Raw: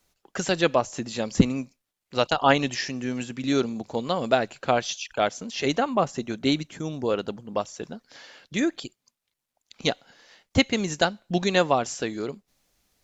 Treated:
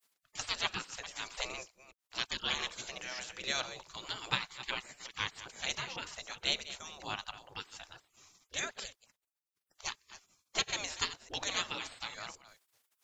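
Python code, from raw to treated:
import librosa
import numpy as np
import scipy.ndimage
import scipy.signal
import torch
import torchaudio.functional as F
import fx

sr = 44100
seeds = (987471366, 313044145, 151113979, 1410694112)

y = fx.reverse_delay(x, sr, ms=213, wet_db=-14)
y = fx.spec_gate(y, sr, threshold_db=-20, keep='weak')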